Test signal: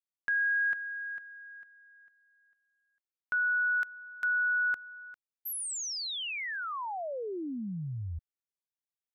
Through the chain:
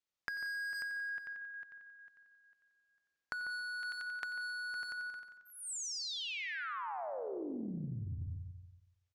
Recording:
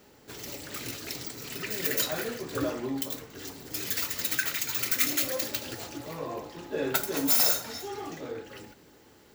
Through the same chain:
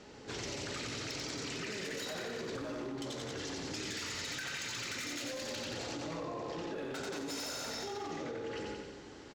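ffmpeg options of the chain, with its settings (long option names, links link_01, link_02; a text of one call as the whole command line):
ffmpeg -i in.wav -filter_complex "[0:a]lowpass=frequency=6800:width=0.5412,lowpass=frequency=6800:width=1.3066,acontrast=36,bandreject=frequency=372.6:width_type=h:width=4,bandreject=frequency=745.2:width_type=h:width=4,bandreject=frequency=1117.8:width_type=h:width=4,asoftclip=type=hard:threshold=-23dB,asplit=2[link_01][link_02];[link_02]aecho=0:1:90|180|270|360|450|540|630:0.562|0.315|0.176|0.0988|0.0553|0.031|0.0173[link_03];[link_01][link_03]amix=inputs=2:normalize=0,acompressor=threshold=-39dB:ratio=16:attack=12:release=26:knee=1:detection=peak,asplit=2[link_04][link_05];[link_05]adelay=145,lowpass=frequency=960:poles=1,volume=-9dB,asplit=2[link_06][link_07];[link_07]adelay=145,lowpass=frequency=960:poles=1,volume=0.31,asplit=2[link_08][link_09];[link_09]adelay=145,lowpass=frequency=960:poles=1,volume=0.31,asplit=2[link_10][link_11];[link_11]adelay=145,lowpass=frequency=960:poles=1,volume=0.31[link_12];[link_06][link_08][link_10][link_12]amix=inputs=4:normalize=0[link_13];[link_04][link_13]amix=inputs=2:normalize=0,volume=-2dB" out.wav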